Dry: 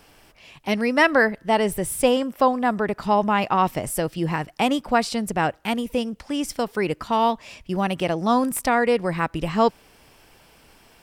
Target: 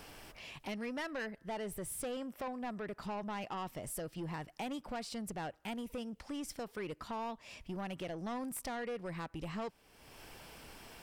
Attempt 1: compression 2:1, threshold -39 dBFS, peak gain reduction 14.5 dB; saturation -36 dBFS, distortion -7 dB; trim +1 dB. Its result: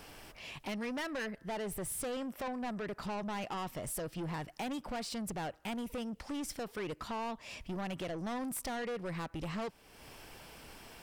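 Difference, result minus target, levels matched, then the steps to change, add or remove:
compression: peak gain reduction -5 dB
change: compression 2:1, threshold -49.5 dBFS, peak gain reduction 20 dB

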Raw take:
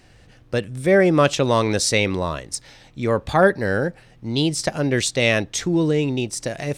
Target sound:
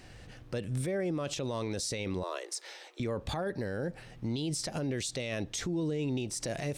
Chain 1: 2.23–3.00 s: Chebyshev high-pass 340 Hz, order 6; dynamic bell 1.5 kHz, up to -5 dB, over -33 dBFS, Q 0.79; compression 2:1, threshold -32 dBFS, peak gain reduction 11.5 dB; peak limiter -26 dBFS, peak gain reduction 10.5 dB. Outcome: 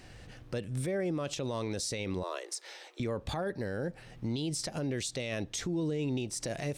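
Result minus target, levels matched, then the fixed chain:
compression: peak gain reduction +3 dB
2.23–3.00 s: Chebyshev high-pass 340 Hz, order 6; dynamic bell 1.5 kHz, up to -5 dB, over -33 dBFS, Q 0.79; compression 2:1, threshold -25.5 dBFS, peak gain reduction 8.5 dB; peak limiter -26 dBFS, peak gain reduction 13.5 dB

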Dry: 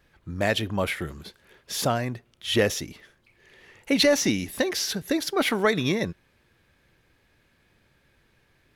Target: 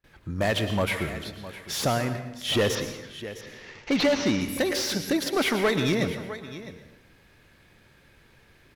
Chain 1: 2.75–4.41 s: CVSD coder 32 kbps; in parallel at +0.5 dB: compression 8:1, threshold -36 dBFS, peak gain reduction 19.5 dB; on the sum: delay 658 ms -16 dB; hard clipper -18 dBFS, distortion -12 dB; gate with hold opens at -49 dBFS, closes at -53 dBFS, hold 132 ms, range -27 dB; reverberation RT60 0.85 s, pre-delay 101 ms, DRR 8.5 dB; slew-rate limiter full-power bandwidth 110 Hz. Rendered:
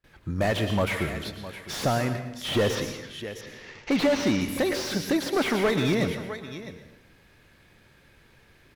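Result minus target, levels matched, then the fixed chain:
compression: peak gain reduction -8.5 dB; slew-rate limiter: distortion +8 dB
2.75–4.41 s: CVSD coder 32 kbps; in parallel at +0.5 dB: compression 8:1, threshold -45.5 dBFS, peak gain reduction 28 dB; on the sum: delay 658 ms -16 dB; hard clipper -18 dBFS, distortion -13 dB; gate with hold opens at -49 dBFS, closes at -53 dBFS, hold 132 ms, range -27 dB; reverberation RT60 0.85 s, pre-delay 101 ms, DRR 8.5 dB; slew-rate limiter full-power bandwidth 247.5 Hz

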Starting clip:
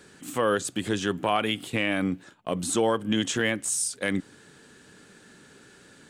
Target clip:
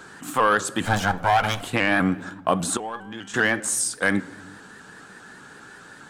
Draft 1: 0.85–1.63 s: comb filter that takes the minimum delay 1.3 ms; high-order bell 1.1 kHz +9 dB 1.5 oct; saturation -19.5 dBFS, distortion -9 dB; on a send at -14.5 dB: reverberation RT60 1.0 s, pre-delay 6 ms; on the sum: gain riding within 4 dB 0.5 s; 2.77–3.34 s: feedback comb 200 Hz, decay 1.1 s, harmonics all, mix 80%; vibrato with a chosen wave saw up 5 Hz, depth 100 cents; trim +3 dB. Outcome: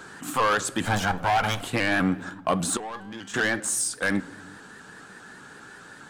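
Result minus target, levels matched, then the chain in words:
saturation: distortion +11 dB
0.85–1.63 s: comb filter that takes the minimum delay 1.3 ms; high-order bell 1.1 kHz +9 dB 1.5 oct; saturation -10 dBFS, distortion -20 dB; on a send at -14.5 dB: reverberation RT60 1.0 s, pre-delay 6 ms; on the sum: gain riding within 4 dB 0.5 s; 2.77–3.34 s: feedback comb 200 Hz, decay 1.1 s, harmonics all, mix 80%; vibrato with a chosen wave saw up 5 Hz, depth 100 cents; trim +3 dB

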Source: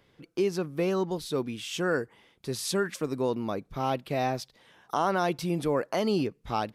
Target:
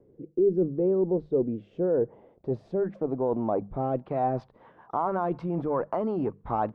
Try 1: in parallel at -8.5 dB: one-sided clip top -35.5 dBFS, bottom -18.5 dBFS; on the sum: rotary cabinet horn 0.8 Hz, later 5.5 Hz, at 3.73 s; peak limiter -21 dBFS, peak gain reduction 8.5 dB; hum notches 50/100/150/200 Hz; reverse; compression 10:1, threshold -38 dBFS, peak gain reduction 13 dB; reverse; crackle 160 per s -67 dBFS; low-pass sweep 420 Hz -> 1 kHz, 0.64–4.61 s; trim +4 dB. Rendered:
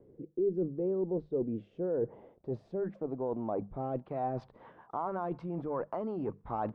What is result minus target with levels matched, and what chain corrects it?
compression: peak gain reduction +7.5 dB
in parallel at -8.5 dB: one-sided clip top -35.5 dBFS, bottom -18.5 dBFS; on the sum: rotary cabinet horn 0.8 Hz, later 5.5 Hz, at 3.73 s; peak limiter -21 dBFS, peak gain reduction 8.5 dB; hum notches 50/100/150/200 Hz; reverse; compression 10:1, threshold -29.5 dBFS, peak gain reduction 5.5 dB; reverse; crackle 160 per s -67 dBFS; low-pass sweep 420 Hz -> 1 kHz, 0.64–4.61 s; trim +4 dB

